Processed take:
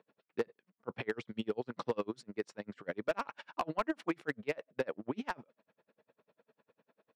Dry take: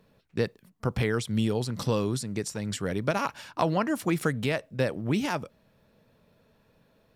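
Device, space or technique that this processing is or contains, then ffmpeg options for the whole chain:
helicopter radio: -af "highpass=310,lowpass=2.5k,aeval=exprs='val(0)*pow(10,-36*(0.5-0.5*cos(2*PI*10*n/s))/20)':c=same,asoftclip=type=hard:threshold=-24.5dB,volume=1dB"

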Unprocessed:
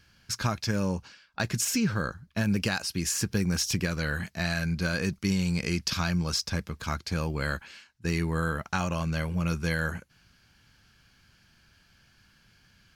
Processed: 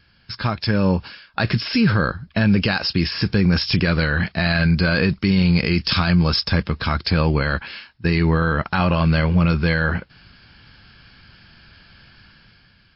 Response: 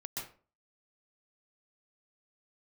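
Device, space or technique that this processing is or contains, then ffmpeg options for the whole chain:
low-bitrate web radio: -af "dynaudnorm=f=170:g=9:m=9.5dB,alimiter=limit=-12.5dB:level=0:latency=1:release=24,volume=4.5dB" -ar 12000 -c:a libmp3lame -b:a 32k

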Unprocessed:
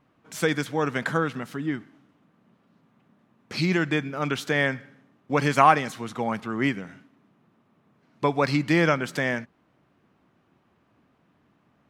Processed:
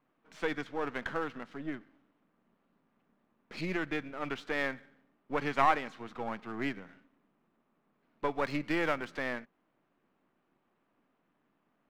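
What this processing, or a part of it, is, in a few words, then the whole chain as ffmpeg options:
crystal radio: -filter_complex "[0:a]highpass=210,lowpass=3.3k,aeval=exprs='if(lt(val(0),0),0.447*val(0),val(0))':c=same,asettb=1/sr,asplit=3[a][b][c];[a]atrim=end=8.294[d];[b]atrim=start=8.29:end=9.15,asetpts=PTS-STARTPTS,afade=t=in:d=0.004:c=qsin,afade=t=out:st=0.856:d=0.004:c=qsin,highshelf=f=8.2k:g=6[e];[c]atrim=start=9.146[f];[d][e]acrossfade=d=0.004:c1=hsin:c2=qsin[g];[g][f]acrossfade=d=0.004:c1=qsin:c2=hsin,volume=-6.5dB"

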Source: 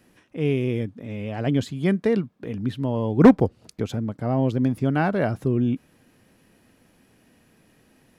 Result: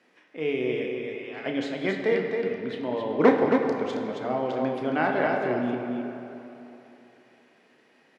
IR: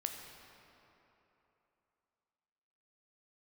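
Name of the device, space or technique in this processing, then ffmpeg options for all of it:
station announcement: -filter_complex "[0:a]asettb=1/sr,asplit=3[a][b][c];[a]atrim=end=0.904[d];[b]atrim=start=0.9:end=1.46,asetpts=PTS-STARTPTS,afade=t=in:d=0.004:c=qsin,afade=t=out:st=0.556:d=0.004:c=qsin,highpass=1.2k[e];[c]atrim=start=1.456[f];[d][e]acrossfade=d=0.004:c1=hsin:c2=qsin[g];[g][f]acrossfade=d=0.004:c1=qsin:c2=hsin,highpass=390,lowpass=4.6k,equalizer=f=2.1k:t=o:w=0.25:g=4.5,aecho=1:1:32.07|271.1:0.355|0.562[h];[1:a]atrim=start_sample=2205[i];[h][i]afir=irnorm=-1:irlink=0"

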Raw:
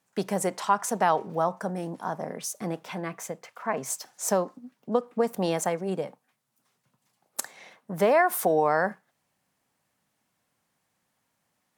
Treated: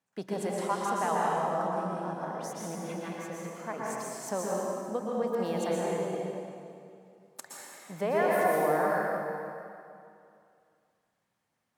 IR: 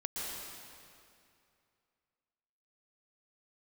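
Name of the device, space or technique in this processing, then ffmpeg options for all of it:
swimming-pool hall: -filter_complex "[1:a]atrim=start_sample=2205[a];[0:a][a]afir=irnorm=-1:irlink=0,highshelf=f=6k:g=-7,volume=-6dB"

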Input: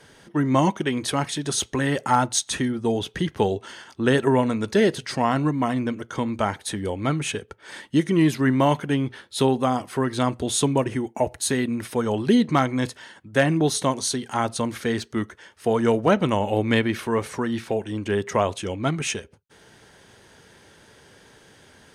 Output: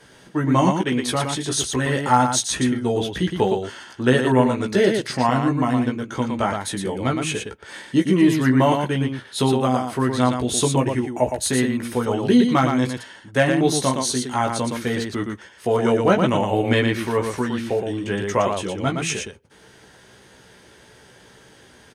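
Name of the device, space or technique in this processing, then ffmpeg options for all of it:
slapback doubling: -filter_complex "[0:a]asplit=3[a][b][c];[b]adelay=16,volume=-3.5dB[d];[c]adelay=116,volume=-4.5dB[e];[a][d][e]amix=inputs=3:normalize=0"

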